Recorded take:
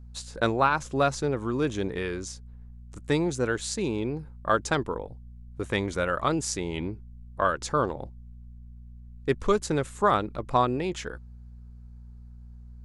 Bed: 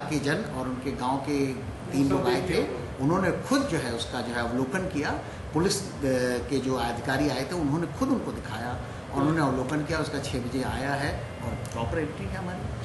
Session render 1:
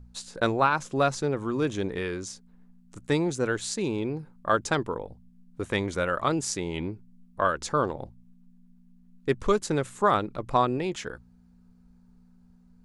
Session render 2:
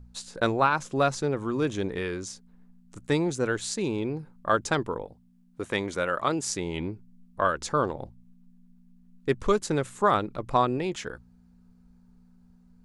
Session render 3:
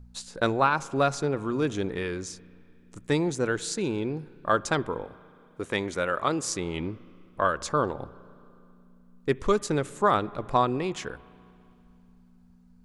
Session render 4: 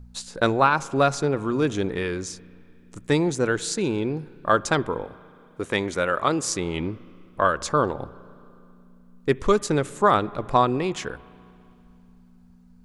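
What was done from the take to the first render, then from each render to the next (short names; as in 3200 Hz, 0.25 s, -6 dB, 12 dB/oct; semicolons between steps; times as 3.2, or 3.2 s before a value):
de-hum 60 Hz, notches 2
5.05–6.45 low shelf 110 Hz -11.5 dB
spring tank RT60 2.7 s, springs 33/58 ms, chirp 70 ms, DRR 19.5 dB
gain +4 dB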